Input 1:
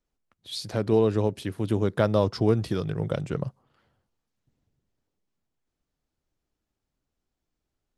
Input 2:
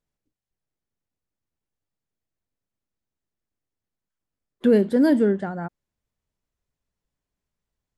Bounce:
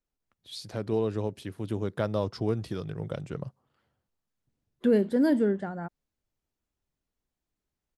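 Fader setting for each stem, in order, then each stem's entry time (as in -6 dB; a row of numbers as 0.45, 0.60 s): -6.5, -5.5 dB; 0.00, 0.20 s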